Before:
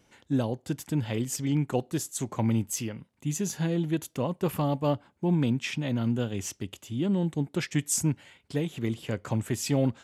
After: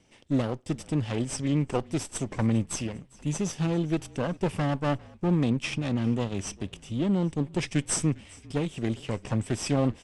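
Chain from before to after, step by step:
lower of the sound and its delayed copy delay 0.36 ms
echo with shifted repeats 401 ms, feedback 56%, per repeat −36 Hz, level −23 dB
downsampling to 22,050 Hz
level +1.5 dB

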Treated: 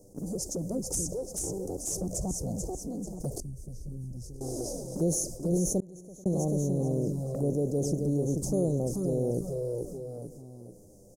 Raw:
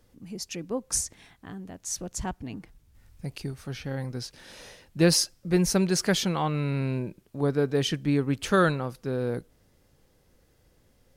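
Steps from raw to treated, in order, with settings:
compressor on every frequency bin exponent 0.6
elliptic band-stop filter 650–6,600 Hz, stop band 60 dB
noise gate −39 dBFS, range −30 dB
repeating echo 437 ms, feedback 24%, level −6 dB
flanger swept by the level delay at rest 10.2 ms, full sweep at −20 dBFS
0:03.40–0:04.41: guitar amp tone stack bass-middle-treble 10-0-1
0:05.80–0:06.26: gate with flip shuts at −28 dBFS, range −39 dB
envelope flattener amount 50%
level −7.5 dB

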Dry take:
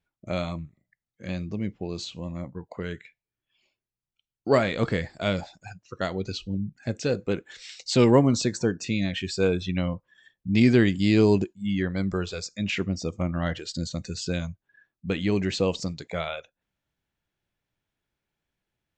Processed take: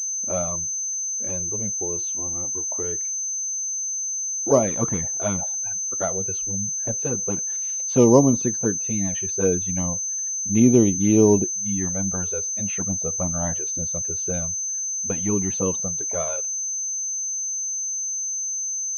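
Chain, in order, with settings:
flanger swept by the level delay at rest 4.3 ms, full sweep at −16 dBFS
graphic EQ with 10 bands 250 Hz +3 dB, 500 Hz +4 dB, 1,000 Hz +7 dB, 2,000 Hz −6 dB
switching amplifier with a slow clock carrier 6,200 Hz

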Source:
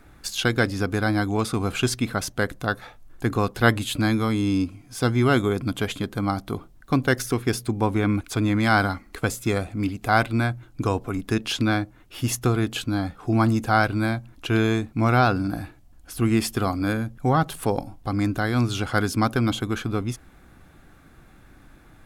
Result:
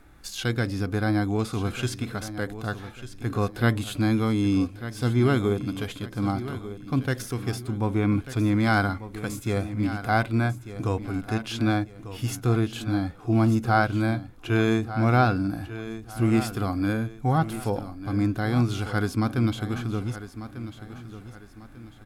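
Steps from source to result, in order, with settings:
harmonic and percussive parts rebalanced percussive −9 dB
repeating echo 1,195 ms, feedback 36%, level −13 dB

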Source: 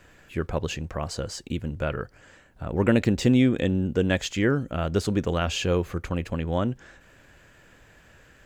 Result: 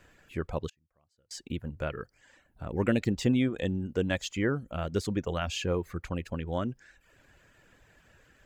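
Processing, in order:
reverb reduction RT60 0.68 s
0:00.69–0:01.31: gate with flip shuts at −29 dBFS, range −35 dB
level −5 dB

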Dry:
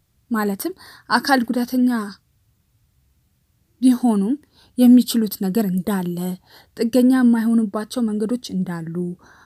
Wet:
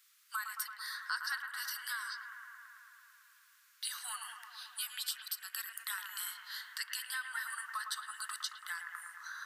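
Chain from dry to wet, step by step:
Butterworth high-pass 1,200 Hz 48 dB per octave
downward compressor 5 to 1, threshold −43 dBFS, peak gain reduction 24 dB
bucket-brigade delay 111 ms, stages 2,048, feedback 80%, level −7 dB
level +5 dB

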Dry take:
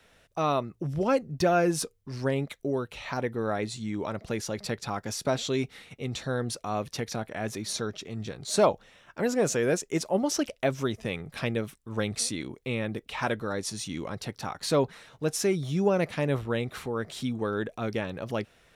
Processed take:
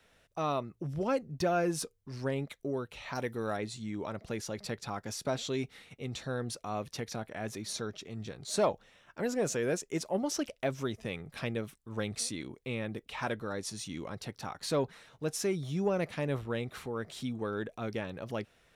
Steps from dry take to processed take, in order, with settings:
0:03.15–0:03.57: high-shelf EQ 3,500 Hz +12 dB
in parallel at −10.5 dB: soft clipping −21.5 dBFS, distortion −13 dB
on the sum: level −7.5 dB

